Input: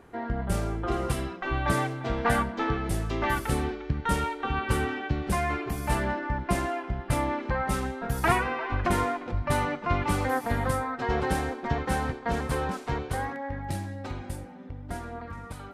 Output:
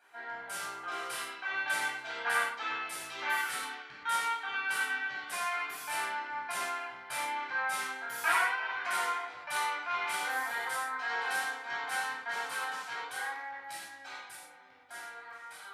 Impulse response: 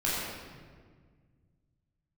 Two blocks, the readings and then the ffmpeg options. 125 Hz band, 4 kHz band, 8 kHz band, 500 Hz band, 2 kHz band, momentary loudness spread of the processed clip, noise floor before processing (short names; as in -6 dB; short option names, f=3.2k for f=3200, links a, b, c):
under -35 dB, +1.0 dB, -0.5 dB, -15.0 dB, +1.5 dB, 12 LU, -42 dBFS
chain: -filter_complex "[0:a]highpass=1.3k[a];[1:a]atrim=start_sample=2205,afade=t=out:st=0.18:d=0.01,atrim=end_sample=8379[b];[a][b]afir=irnorm=-1:irlink=0,volume=-6.5dB"